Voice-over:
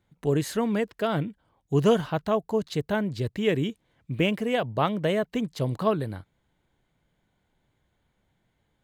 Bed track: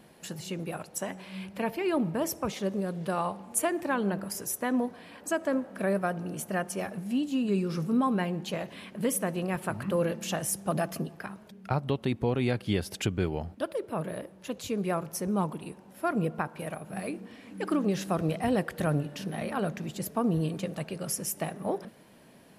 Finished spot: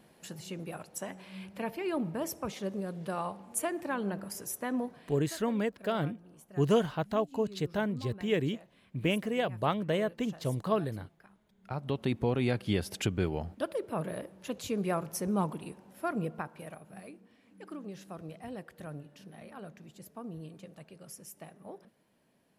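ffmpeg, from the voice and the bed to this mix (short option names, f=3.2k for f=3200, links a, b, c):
-filter_complex "[0:a]adelay=4850,volume=-5dB[a];[1:a]volume=13.5dB,afade=t=out:st=4.83:d=0.54:silence=0.177828,afade=t=in:st=11.56:d=0.48:silence=0.11885,afade=t=out:st=15.5:d=1.69:silence=0.199526[b];[a][b]amix=inputs=2:normalize=0"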